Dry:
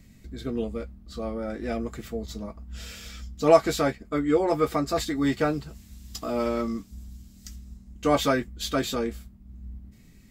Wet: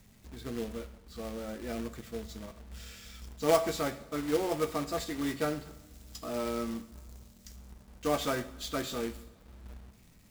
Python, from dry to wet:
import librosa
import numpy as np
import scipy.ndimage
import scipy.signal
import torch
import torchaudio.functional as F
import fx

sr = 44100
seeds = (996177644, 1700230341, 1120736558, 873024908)

y = fx.quant_companded(x, sr, bits=4)
y = fx.rev_double_slope(y, sr, seeds[0], early_s=0.64, late_s=2.5, knee_db=-18, drr_db=9.5)
y = F.gain(torch.from_numpy(y), -8.5).numpy()